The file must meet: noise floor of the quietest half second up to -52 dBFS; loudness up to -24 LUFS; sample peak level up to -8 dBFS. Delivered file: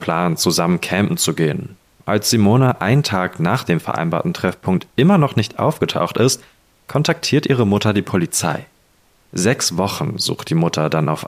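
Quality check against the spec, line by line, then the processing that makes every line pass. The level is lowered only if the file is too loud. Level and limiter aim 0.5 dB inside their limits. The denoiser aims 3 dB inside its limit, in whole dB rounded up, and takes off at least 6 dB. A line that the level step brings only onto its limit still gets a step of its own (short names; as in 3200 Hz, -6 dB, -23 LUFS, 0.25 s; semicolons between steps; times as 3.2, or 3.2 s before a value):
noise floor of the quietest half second -56 dBFS: OK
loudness -17.5 LUFS: fail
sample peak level -4.5 dBFS: fail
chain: gain -7 dB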